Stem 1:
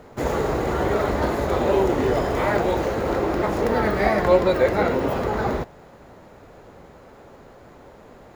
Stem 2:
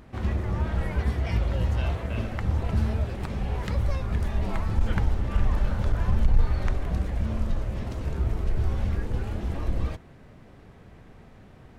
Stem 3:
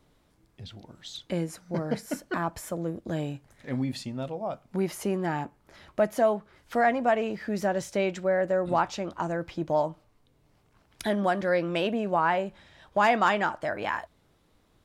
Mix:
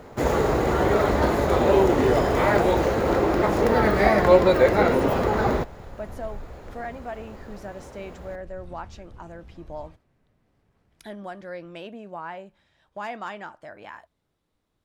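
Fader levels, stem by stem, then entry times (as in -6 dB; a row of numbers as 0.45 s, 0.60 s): +1.5 dB, -18.5 dB, -11.5 dB; 0.00 s, 0.00 s, 0.00 s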